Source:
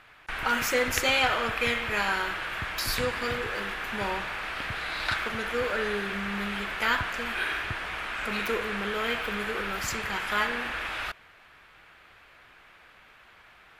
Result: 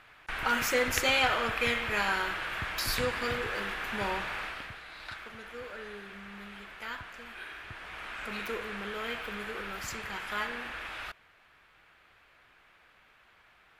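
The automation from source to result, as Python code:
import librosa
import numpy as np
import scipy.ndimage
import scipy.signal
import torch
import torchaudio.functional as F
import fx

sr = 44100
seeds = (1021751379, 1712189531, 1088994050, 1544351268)

y = fx.gain(x, sr, db=fx.line((4.41, -2.0), (4.83, -14.0), (7.54, -14.0), (8.07, -7.0)))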